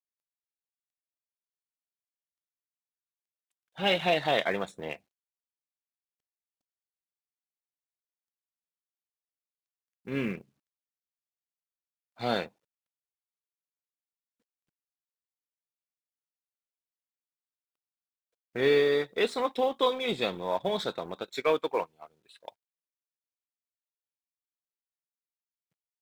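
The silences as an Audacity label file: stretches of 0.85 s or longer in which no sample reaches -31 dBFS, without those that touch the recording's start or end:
4.940000	10.080000	silence
10.350000	12.210000	silence
12.450000	18.560000	silence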